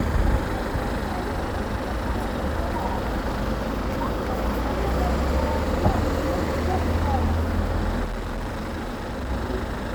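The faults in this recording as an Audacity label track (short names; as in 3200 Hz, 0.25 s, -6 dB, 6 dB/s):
8.040000	9.310000	clipped -26 dBFS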